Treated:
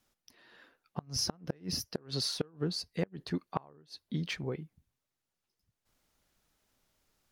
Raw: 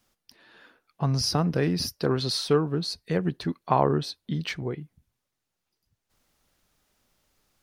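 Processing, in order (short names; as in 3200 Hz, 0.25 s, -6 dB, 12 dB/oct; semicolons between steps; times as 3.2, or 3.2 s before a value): speed mistake 24 fps film run at 25 fps; flipped gate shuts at -14 dBFS, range -30 dB; gain -5 dB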